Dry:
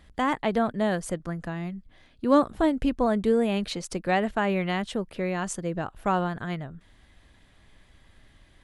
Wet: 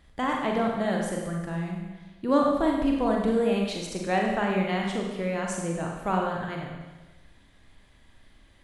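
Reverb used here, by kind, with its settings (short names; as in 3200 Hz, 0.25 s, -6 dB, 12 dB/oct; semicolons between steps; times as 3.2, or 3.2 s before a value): Schroeder reverb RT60 1.2 s, combs from 32 ms, DRR -0.5 dB; gain -3.5 dB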